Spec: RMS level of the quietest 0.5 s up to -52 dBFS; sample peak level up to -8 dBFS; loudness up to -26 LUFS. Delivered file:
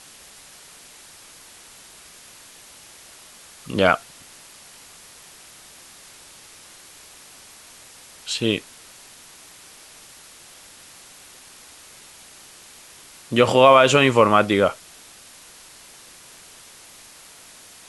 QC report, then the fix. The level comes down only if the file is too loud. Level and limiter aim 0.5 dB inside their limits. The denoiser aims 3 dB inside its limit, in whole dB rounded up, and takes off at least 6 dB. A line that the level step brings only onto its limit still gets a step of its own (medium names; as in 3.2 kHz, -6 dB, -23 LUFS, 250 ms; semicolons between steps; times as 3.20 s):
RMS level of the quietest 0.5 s -46 dBFS: fail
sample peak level -2.0 dBFS: fail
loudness -17.5 LUFS: fail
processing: trim -9 dB